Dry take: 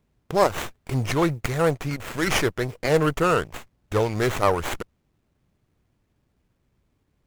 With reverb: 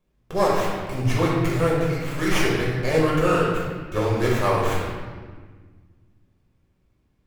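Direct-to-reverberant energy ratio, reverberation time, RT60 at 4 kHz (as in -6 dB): -6.0 dB, 1.5 s, 1.1 s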